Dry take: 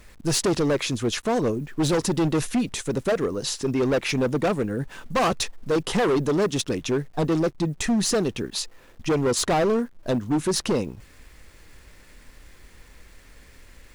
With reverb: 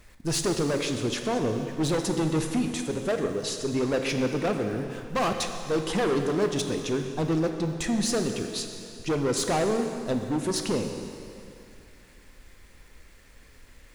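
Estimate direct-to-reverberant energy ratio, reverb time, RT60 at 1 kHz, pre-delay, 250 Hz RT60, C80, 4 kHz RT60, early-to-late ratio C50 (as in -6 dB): 5.0 dB, 2.6 s, 2.6 s, 6 ms, 2.6 s, 7.0 dB, 2.4 s, 6.0 dB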